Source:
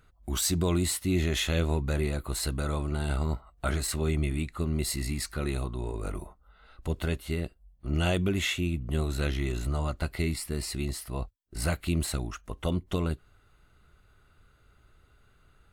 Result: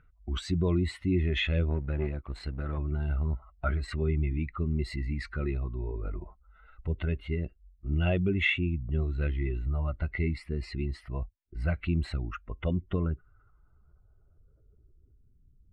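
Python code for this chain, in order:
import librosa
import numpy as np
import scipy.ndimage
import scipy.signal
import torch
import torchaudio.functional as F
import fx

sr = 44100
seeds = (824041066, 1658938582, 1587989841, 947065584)

y = fx.spec_expand(x, sr, power=1.6)
y = fx.power_curve(y, sr, exponent=1.4, at=(1.7, 2.78))
y = fx.filter_sweep_lowpass(y, sr, from_hz=2300.0, to_hz=240.0, start_s=12.69, end_s=15.46, q=2.1)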